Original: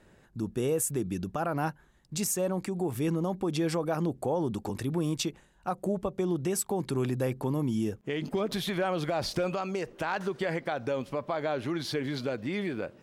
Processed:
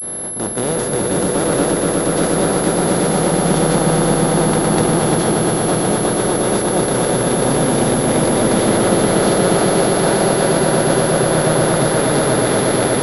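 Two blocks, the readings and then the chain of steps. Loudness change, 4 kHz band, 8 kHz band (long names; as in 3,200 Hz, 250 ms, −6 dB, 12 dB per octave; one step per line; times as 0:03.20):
+16.0 dB, +15.5 dB, +19.0 dB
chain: compressor on every frequency bin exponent 0.2
low-shelf EQ 340 Hz +3 dB
delay that swaps between a low-pass and a high-pass 207 ms, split 880 Hz, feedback 80%, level −6 dB
pitch vibrato 0.53 Hz 58 cents
downward expander −13 dBFS
compressor whose output falls as the input rises −23 dBFS
parametric band 2,500 Hz −6.5 dB 0.32 octaves
on a send: echo that builds up and dies away 119 ms, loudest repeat 5, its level −6 dB
on the sum: switching amplifier with a slow clock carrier 11,000 Hz
level +4 dB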